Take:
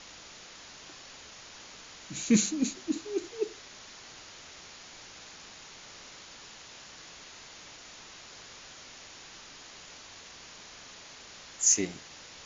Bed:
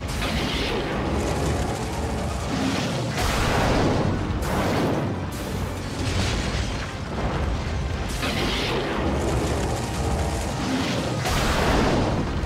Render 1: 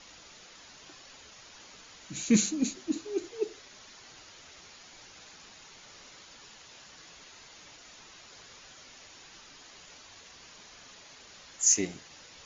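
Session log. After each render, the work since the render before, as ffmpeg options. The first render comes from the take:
ffmpeg -i in.wav -af "afftdn=noise_reduction=6:noise_floor=-50" out.wav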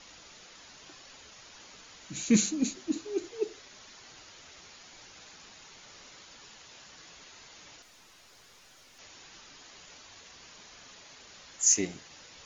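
ffmpeg -i in.wav -filter_complex "[0:a]asettb=1/sr,asplit=3[link_01][link_02][link_03];[link_01]atrim=end=7.824[link_04];[link_02]atrim=start=7.82:end=8.99,asetpts=PTS-STARTPTS,afade=type=in:duration=0.004:curve=qsin,afade=type=out:start_time=1.166:duration=0.004:curve=qsin,aeval=exprs='(tanh(501*val(0)+0.45)-tanh(0.45))/501':channel_layout=same[link_05];[link_03]atrim=start=8.986[link_06];[link_04][link_05]acrossfade=duration=0.004:curve1=hsin:curve2=qsin[link_07];[link_07][link_06]acrossfade=duration=0.004:curve1=qsin:curve2=hsin" out.wav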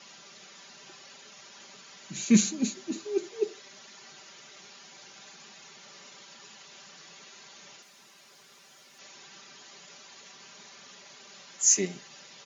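ffmpeg -i in.wav -af "highpass=frequency=120:width=0.5412,highpass=frequency=120:width=1.3066,aecho=1:1:5.1:0.65" out.wav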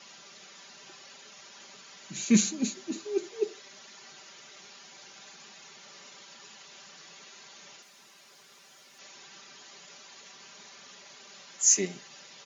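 ffmpeg -i in.wav -af "lowshelf=frequency=200:gain=-3.5" out.wav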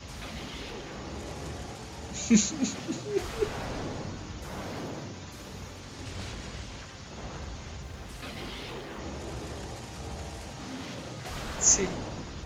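ffmpeg -i in.wav -i bed.wav -filter_complex "[1:a]volume=-15dB[link_01];[0:a][link_01]amix=inputs=2:normalize=0" out.wav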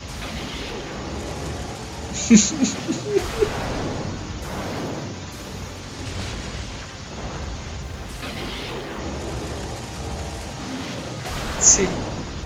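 ffmpeg -i in.wav -af "volume=9dB,alimiter=limit=-1dB:level=0:latency=1" out.wav

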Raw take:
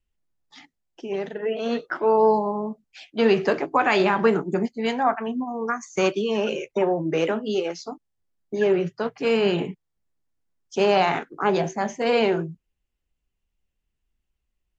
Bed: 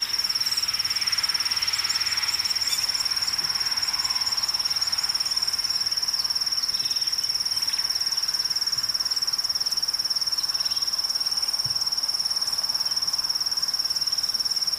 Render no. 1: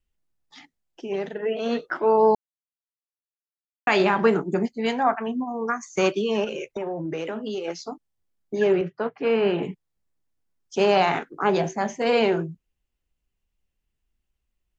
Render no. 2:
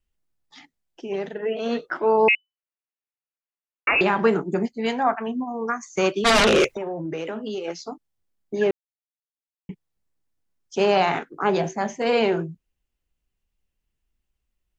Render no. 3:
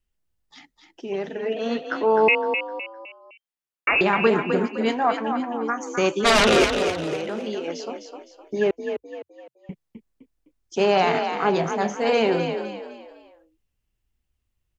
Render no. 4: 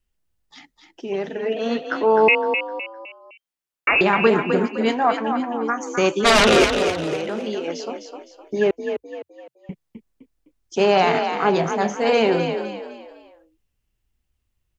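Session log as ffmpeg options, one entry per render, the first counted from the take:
ffmpeg -i in.wav -filter_complex "[0:a]asettb=1/sr,asplit=3[link_01][link_02][link_03];[link_01]atrim=end=6.444[link_04];[link_02]atrim=start=6.44:end=7.68,asetpts=PTS-STARTPTS,afade=type=in:duration=0.004:curve=qsin,afade=type=out:start_time=1.236:duration=0.004:curve=qsin,acompressor=threshold=-26dB:ratio=6:attack=3.2:release=140:knee=1:detection=peak[link_05];[link_03]atrim=start=7.676[link_06];[link_04][link_05]acrossfade=duration=0.004:curve1=hsin:curve2=qsin[link_07];[link_07][link_06]acrossfade=duration=0.004:curve1=qsin:curve2=hsin,asettb=1/sr,asplit=3[link_08][link_09][link_10];[link_08]atrim=end=8.814[link_11];[link_09]atrim=start=8.81:end=9.63,asetpts=PTS-STARTPTS,afade=type=in:duration=0.004:curve=qsin,afade=type=out:start_time=0.816:duration=0.004:curve=qsin,highpass=190,lowpass=2400[link_12];[link_10]atrim=start=9.626[link_13];[link_11][link_12]acrossfade=duration=0.004:curve1=hsin:curve2=qsin[link_14];[link_14][link_13]acrossfade=duration=0.004:curve1=qsin:curve2=hsin,asplit=3[link_15][link_16][link_17];[link_15]atrim=end=2.35,asetpts=PTS-STARTPTS,afade=type=out:start_time=2.346:duration=0.004:curve=hsin[link_18];[link_16]atrim=start=2.35:end=3.87,asetpts=PTS-STARTPTS,volume=0[link_19];[link_17]atrim=start=3.87,asetpts=PTS-STARTPTS,afade=type=in:duration=0.004:curve=hsin[link_20];[link_18][link_19][link_20]concat=n=3:v=0:a=1" out.wav
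ffmpeg -i in.wav -filter_complex "[0:a]asettb=1/sr,asplit=3[link_01][link_02][link_03];[link_01]atrim=end=2.284[link_04];[link_02]atrim=start=2.28:end=4.01,asetpts=PTS-STARTPTS,afade=type=in:duration=0.004:curve=qsin,afade=type=out:start_time=1.726:duration=0.004:curve=qsin,lowpass=frequency=2600:width_type=q:width=0.5098,lowpass=frequency=2600:width_type=q:width=0.6013,lowpass=frequency=2600:width_type=q:width=0.9,lowpass=frequency=2600:width_type=q:width=2.563,afreqshift=-3000[link_05];[link_03]atrim=start=4.006[link_06];[link_04][link_05]acrossfade=duration=0.004:curve1=hsin:curve2=qsin[link_07];[link_07][link_06]acrossfade=duration=0.004:curve1=qsin:curve2=hsin,asplit=3[link_08][link_09][link_10];[link_08]afade=type=out:start_time=6.24:duration=0.02[link_11];[link_09]aeval=exprs='0.224*sin(PI/2*5.62*val(0)/0.224)':channel_layout=same,afade=type=in:start_time=6.24:duration=0.02,afade=type=out:start_time=6.74:duration=0.02[link_12];[link_10]afade=type=in:start_time=6.74:duration=0.02[link_13];[link_11][link_12][link_13]amix=inputs=3:normalize=0,asplit=3[link_14][link_15][link_16];[link_14]atrim=end=8.71,asetpts=PTS-STARTPTS,afade=type=out:start_time=8.706:duration=0.004:curve=hsin[link_17];[link_15]atrim=start=8.71:end=9.69,asetpts=PTS-STARTPTS,volume=0[link_18];[link_16]atrim=start=9.69,asetpts=PTS-STARTPTS,afade=type=in:duration=0.004:curve=hsin[link_19];[link_17][link_18][link_19]concat=n=3:v=0:a=1" out.wav
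ffmpeg -i in.wav -filter_complex "[0:a]asplit=5[link_01][link_02][link_03][link_04][link_05];[link_02]adelay=256,afreqshift=39,volume=-7dB[link_06];[link_03]adelay=512,afreqshift=78,volume=-15.4dB[link_07];[link_04]adelay=768,afreqshift=117,volume=-23.8dB[link_08];[link_05]adelay=1024,afreqshift=156,volume=-32.2dB[link_09];[link_01][link_06][link_07][link_08][link_09]amix=inputs=5:normalize=0" out.wav
ffmpeg -i in.wav -af "volume=2.5dB" out.wav

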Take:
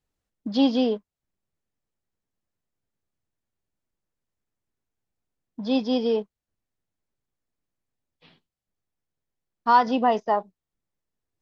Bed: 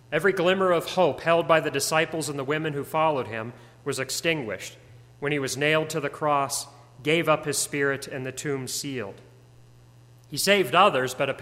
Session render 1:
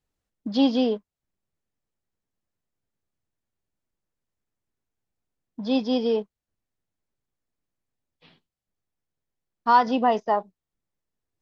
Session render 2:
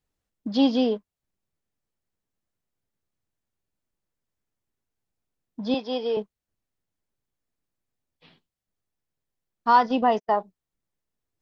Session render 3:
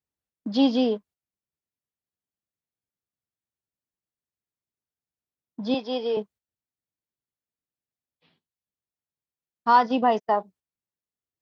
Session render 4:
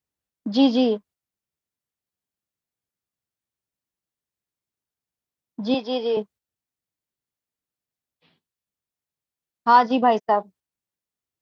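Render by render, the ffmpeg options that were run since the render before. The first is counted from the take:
ffmpeg -i in.wav -af anull out.wav
ffmpeg -i in.wav -filter_complex "[0:a]asettb=1/sr,asplit=3[link_01][link_02][link_03];[link_01]atrim=end=5.744[link_04];[link_02]atrim=start=5.74:end=6.17,asetpts=PTS-STARTPTS,afade=type=in:duration=0.004:curve=qsin,afade=type=out:start_time=0.426:duration=0.004:curve=qsin,highpass=420,lowpass=4500[link_05];[link_03]atrim=start=6.166[link_06];[link_04][link_05]acrossfade=duration=0.004:curve1=hsin:curve2=qsin[link_07];[link_07][link_06]acrossfade=duration=0.004:curve1=qsin:curve2=hsin,asettb=1/sr,asplit=3[link_08][link_09][link_10];[link_08]atrim=end=9.764[link_11];[link_09]atrim=start=9.76:end=10.36,asetpts=PTS-STARTPTS,afade=type=in:duration=0.004:curve=qsin,afade=type=out:start_time=0.596:duration=0.004:curve=qsin,agate=range=-38dB:threshold=-29dB:ratio=16:release=100:detection=peak[link_12];[link_10]atrim=start=10.356[link_13];[link_11][link_12]acrossfade=duration=0.004:curve1=hsin:curve2=qsin[link_14];[link_14][link_13]acrossfade=duration=0.004:curve1=qsin:curve2=hsin" out.wav
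ffmpeg -i in.wav -af "agate=range=-10dB:threshold=-49dB:ratio=16:detection=peak,highpass=64" out.wav
ffmpeg -i in.wav -af "volume=3dB" out.wav

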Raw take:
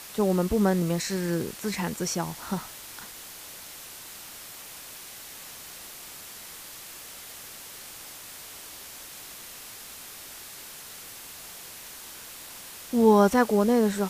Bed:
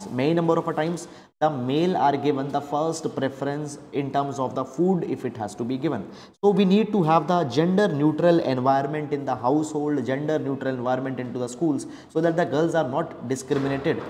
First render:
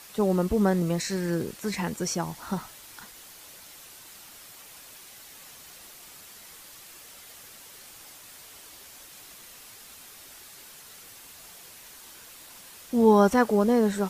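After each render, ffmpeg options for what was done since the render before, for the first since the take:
ffmpeg -i in.wav -af "afftdn=noise_reduction=6:noise_floor=-44" out.wav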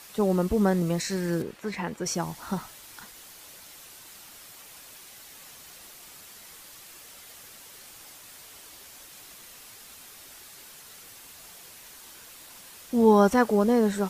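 ffmpeg -i in.wav -filter_complex "[0:a]asettb=1/sr,asplit=3[link_01][link_02][link_03];[link_01]atrim=end=1.424[link_04];[link_02]atrim=start=1.42:end=2.06,asetpts=PTS-STARTPTS,afade=type=in:duration=0.004:curve=qsin,afade=type=out:start_time=0.636:duration=0.004:curve=qsin,bass=frequency=250:gain=-5,treble=frequency=4000:gain=-12[link_05];[link_03]atrim=start=2.056[link_06];[link_04][link_05]acrossfade=duration=0.004:curve1=hsin:curve2=qsin[link_07];[link_07][link_06]acrossfade=duration=0.004:curve1=qsin:curve2=hsin" out.wav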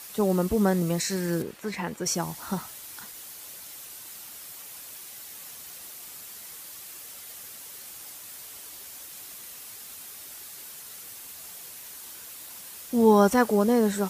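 ffmpeg -i in.wav -af "highpass=49,highshelf=frequency=7600:gain=9" out.wav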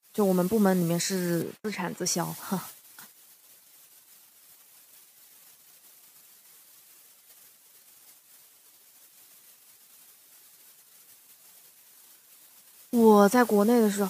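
ffmpeg -i in.wav -af "highpass=frequency=110:width=0.5412,highpass=frequency=110:width=1.3066,agate=range=-39dB:threshold=-40dB:ratio=16:detection=peak" out.wav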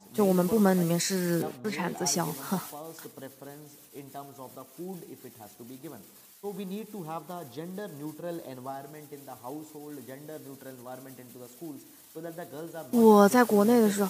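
ffmpeg -i in.wav -i bed.wav -filter_complex "[1:a]volume=-18.5dB[link_01];[0:a][link_01]amix=inputs=2:normalize=0" out.wav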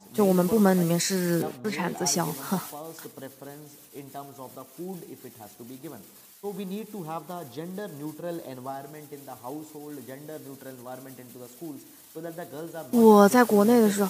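ffmpeg -i in.wav -af "volume=2.5dB" out.wav

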